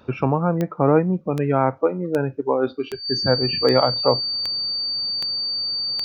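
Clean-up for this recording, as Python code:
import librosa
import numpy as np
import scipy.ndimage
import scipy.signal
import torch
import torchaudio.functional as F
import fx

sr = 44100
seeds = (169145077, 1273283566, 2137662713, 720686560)

y = fx.fix_declick_ar(x, sr, threshold=10.0)
y = fx.notch(y, sr, hz=4600.0, q=30.0)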